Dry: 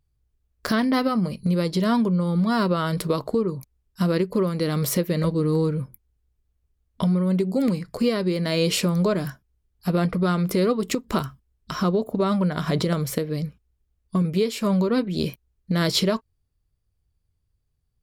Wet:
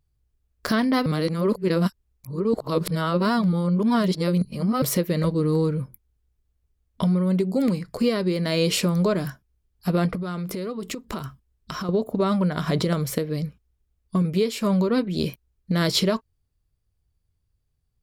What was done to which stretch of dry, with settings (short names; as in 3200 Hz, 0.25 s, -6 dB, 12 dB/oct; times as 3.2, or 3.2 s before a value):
1.06–4.82 reverse
10.15–11.89 compressor, threshold -27 dBFS